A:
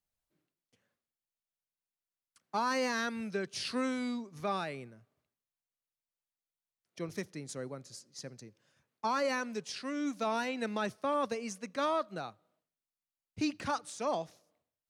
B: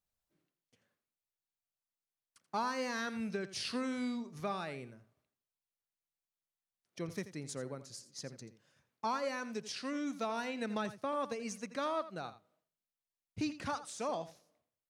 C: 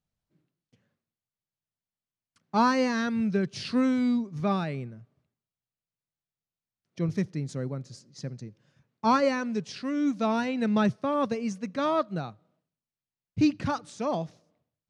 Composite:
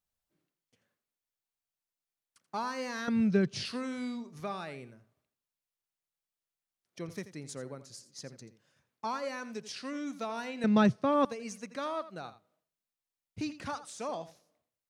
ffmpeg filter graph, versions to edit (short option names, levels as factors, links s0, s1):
-filter_complex "[2:a]asplit=2[s0][s1];[1:a]asplit=3[s2][s3][s4];[s2]atrim=end=3.082[s5];[s0]atrim=start=3.078:end=3.652[s6];[s3]atrim=start=3.648:end=10.642[s7];[s1]atrim=start=10.638:end=11.252[s8];[s4]atrim=start=11.248[s9];[s5][s6]acrossfade=d=0.004:c1=hsin:c2=hsin[s10];[s10][s7]acrossfade=d=0.004:c1=hsin:c2=hsin[s11];[s11][s8]acrossfade=d=0.004:c1=hsin:c2=hsin[s12];[s12][s9]acrossfade=d=0.004:c1=hsin:c2=hsin"